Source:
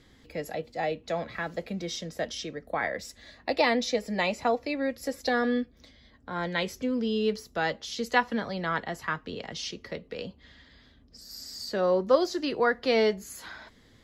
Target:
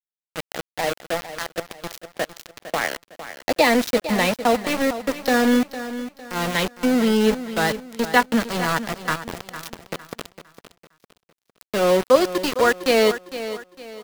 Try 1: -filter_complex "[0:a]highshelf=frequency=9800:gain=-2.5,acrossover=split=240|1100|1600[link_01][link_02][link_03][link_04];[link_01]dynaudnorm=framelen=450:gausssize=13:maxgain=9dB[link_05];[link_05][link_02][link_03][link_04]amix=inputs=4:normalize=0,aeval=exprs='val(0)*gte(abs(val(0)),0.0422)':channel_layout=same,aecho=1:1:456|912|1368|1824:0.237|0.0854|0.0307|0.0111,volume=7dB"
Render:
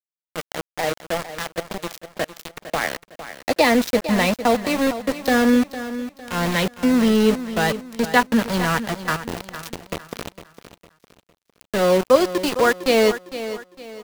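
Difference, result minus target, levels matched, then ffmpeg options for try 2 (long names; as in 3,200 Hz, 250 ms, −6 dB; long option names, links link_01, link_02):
125 Hz band +3.0 dB
-filter_complex "[0:a]highpass=frequency=170:poles=1,highshelf=frequency=9800:gain=-2.5,acrossover=split=240|1100|1600[link_01][link_02][link_03][link_04];[link_01]dynaudnorm=framelen=450:gausssize=13:maxgain=9dB[link_05];[link_05][link_02][link_03][link_04]amix=inputs=4:normalize=0,aeval=exprs='val(0)*gte(abs(val(0)),0.0422)':channel_layout=same,aecho=1:1:456|912|1368|1824:0.237|0.0854|0.0307|0.0111,volume=7dB"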